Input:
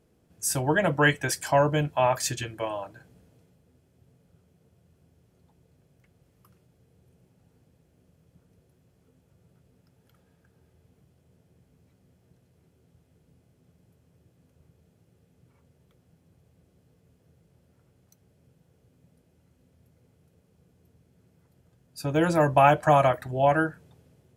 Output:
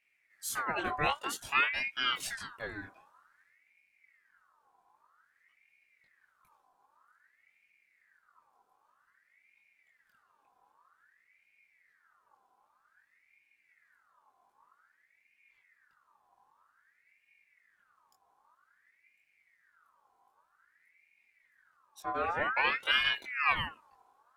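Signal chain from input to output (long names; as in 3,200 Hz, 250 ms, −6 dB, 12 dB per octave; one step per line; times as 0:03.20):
0:22.00–0:22.74: head-to-tape spacing loss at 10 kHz 22 dB
multi-voice chorus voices 6, 0.15 Hz, delay 22 ms, depth 1.2 ms
ring modulator whose carrier an LFO sweeps 1,600 Hz, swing 45%, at 0.52 Hz
level −4 dB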